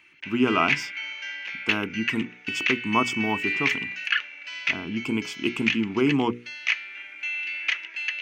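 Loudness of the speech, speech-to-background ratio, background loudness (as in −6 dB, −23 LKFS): −27.0 LKFS, 1.0 dB, −28.0 LKFS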